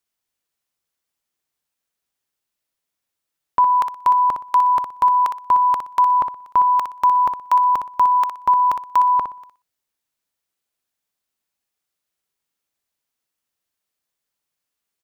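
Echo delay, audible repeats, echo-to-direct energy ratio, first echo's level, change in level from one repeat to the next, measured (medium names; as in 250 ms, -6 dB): 61 ms, 2, -8.0 dB, -8.0 dB, -13.5 dB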